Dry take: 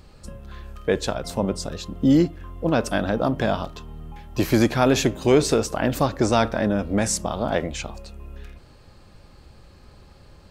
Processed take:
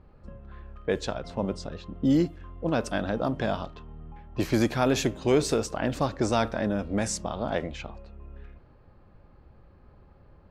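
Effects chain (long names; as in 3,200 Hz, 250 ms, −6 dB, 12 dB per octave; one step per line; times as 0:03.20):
low-pass that shuts in the quiet parts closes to 1,400 Hz, open at −16 dBFS
level −5.5 dB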